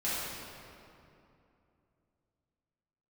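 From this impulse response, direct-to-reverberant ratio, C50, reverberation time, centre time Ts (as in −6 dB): −11.5 dB, −4.0 dB, 2.7 s, 160 ms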